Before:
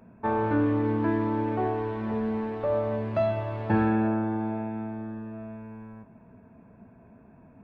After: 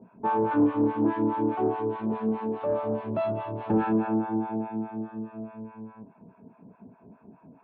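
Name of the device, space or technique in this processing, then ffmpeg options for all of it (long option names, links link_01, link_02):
guitar amplifier with harmonic tremolo: -filter_complex "[0:a]acrossover=split=700[link_01][link_02];[link_01]aeval=exprs='val(0)*(1-1/2+1/2*cos(2*PI*4.8*n/s))':channel_layout=same[link_03];[link_02]aeval=exprs='val(0)*(1-1/2-1/2*cos(2*PI*4.8*n/s))':channel_layout=same[link_04];[link_03][link_04]amix=inputs=2:normalize=0,asoftclip=type=tanh:threshold=-22.5dB,highpass=91,equalizer=frequency=93:width_type=q:width=4:gain=-8,equalizer=frequency=180:width_type=q:width=4:gain=4,equalizer=frequency=280:width_type=q:width=4:gain=5,equalizer=frequency=400:width_type=q:width=4:gain=5,equalizer=frequency=920:width_type=q:width=4:gain=6,equalizer=frequency=1900:width_type=q:width=4:gain=-8,lowpass=frequency=3500:width=0.5412,lowpass=frequency=3500:width=1.3066,volume=3.5dB"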